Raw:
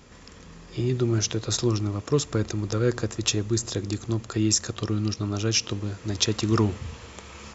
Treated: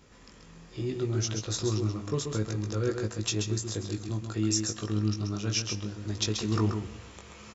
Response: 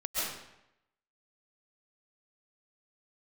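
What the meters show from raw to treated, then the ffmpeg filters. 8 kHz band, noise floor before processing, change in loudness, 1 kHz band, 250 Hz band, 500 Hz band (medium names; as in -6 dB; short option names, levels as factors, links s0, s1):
no reading, -47 dBFS, -5.0 dB, -5.5 dB, -4.5 dB, -5.5 dB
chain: -filter_complex "[0:a]asplit=2[s0][s1];[s1]adelay=19,volume=0.562[s2];[s0][s2]amix=inputs=2:normalize=0,aecho=1:1:133:0.501,asplit=2[s3][s4];[1:a]atrim=start_sample=2205[s5];[s4][s5]afir=irnorm=-1:irlink=0,volume=0.0596[s6];[s3][s6]amix=inputs=2:normalize=0,volume=0.398"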